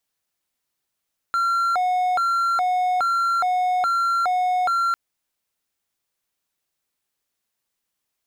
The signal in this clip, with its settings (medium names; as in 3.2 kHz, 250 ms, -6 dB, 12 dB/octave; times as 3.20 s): siren hi-lo 730–1370 Hz 1.2 per s triangle -16 dBFS 3.60 s